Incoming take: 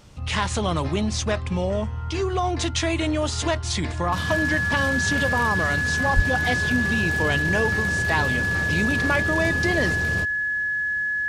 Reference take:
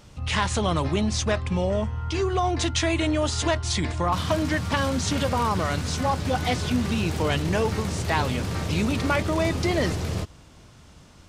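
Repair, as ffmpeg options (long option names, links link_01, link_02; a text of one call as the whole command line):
ffmpeg -i in.wav -filter_complex "[0:a]bandreject=frequency=1700:width=30,asplit=3[link_01][link_02][link_03];[link_01]afade=type=out:start_time=6.15:duration=0.02[link_04];[link_02]highpass=frequency=140:width=0.5412,highpass=frequency=140:width=1.3066,afade=type=in:start_time=6.15:duration=0.02,afade=type=out:start_time=6.27:duration=0.02[link_05];[link_03]afade=type=in:start_time=6.27:duration=0.02[link_06];[link_04][link_05][link_06]amix=inputs=3:normalize=0" out.wav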